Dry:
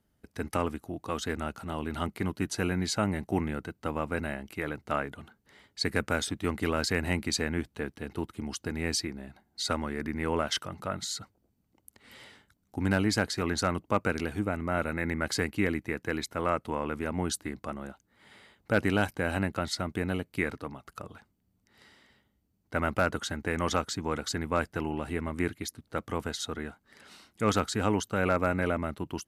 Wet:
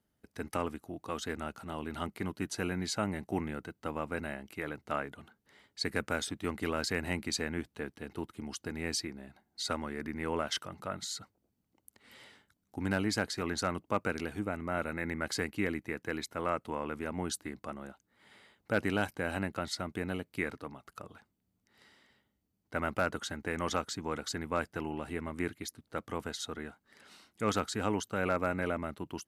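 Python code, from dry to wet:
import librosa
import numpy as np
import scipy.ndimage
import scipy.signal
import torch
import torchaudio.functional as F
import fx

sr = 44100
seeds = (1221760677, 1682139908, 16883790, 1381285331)

y = fx.low_shelf(x, sr, hz=97.0, db=-7.0)
y = y * 10.0 ** (-4.0 / 20.0)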